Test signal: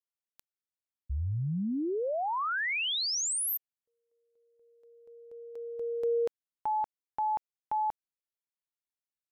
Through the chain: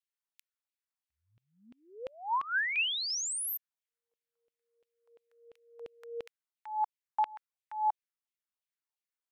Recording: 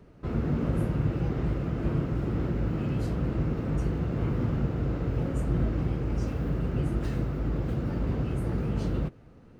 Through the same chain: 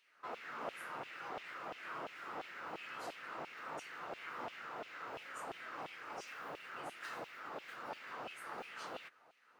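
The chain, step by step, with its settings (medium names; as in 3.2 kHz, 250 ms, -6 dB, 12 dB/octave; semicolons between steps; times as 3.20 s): LFO high-pass saw down 2.9 Hz 690–2900 Hz; trim -4 dB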